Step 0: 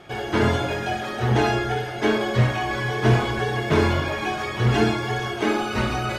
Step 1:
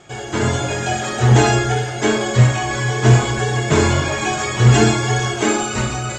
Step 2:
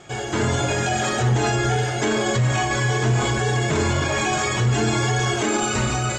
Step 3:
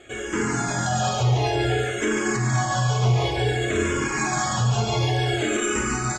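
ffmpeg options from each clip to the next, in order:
-af "equalizer=f=130:w=5.4:g=6.5,dynaudnorm=f=130:g=11:m=11.5dB,lowpass=f=7.3k:t=q:w=14,volume=-1dB"
-af "alimiter=limit=-13.5dB:level=0:latency=1:release=36,volume=1dB"
-filter_complex "[0:a]acontrast=35,aecho=1:1:143:0.531,asplit=2[a][b];[b]afreqshift=-0.55[c];[a][c]amix=inputs=2:normalize=1,volume=-5.5dB"

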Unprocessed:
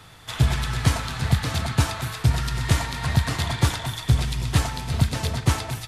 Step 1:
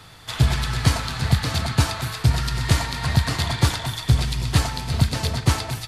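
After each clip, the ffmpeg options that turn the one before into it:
-af "equalizer=f=4.5k:t=o:w=0.3:g=5,volume=1.5dB"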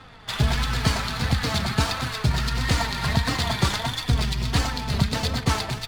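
-filter_complex "[0:a]asplit=2[a][b];[b]alimiter=limit=-15dB:level=0:latency=1:release=93,volume=-1dB[c];[a][c]amix=inputs=2:normalize=0,adynamicsmooth=sensitivity=7.5:basefreq=2k,flanger=delay=3.7:depth=1.5:regen=31:speed=1.5:shape=triangular"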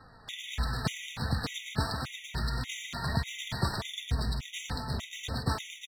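-af "aecho=1:1:153:0.376,afftfilt=real='re*gt(sin(2*PI*1.7*pts/sr)*(1-2*mod(floor(b*sr/1024/1900),2)),0)':imag='im*gt(sin(2*PI*1.7*pts/sr)*(1-2*mod(floor(b*sr/1024/1900),2)),0)':win_size=1024:overlap=0.75,volume=-7.5dB"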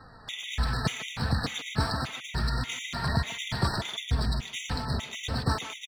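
-filter_complex "[0:a]asoftclip=type=tanh:threshold=-17dB,equalizer=f=14k:w=0.89:g=-8,asplit=2[a][b];[b]adelay=150,highpass=300,lowpass=3.4k,asoftclip=type=hard:threshold=-27.5dB,volume=-11dB[c];[a][c]amix=inputs=2:normalize=0,volume=4dB"

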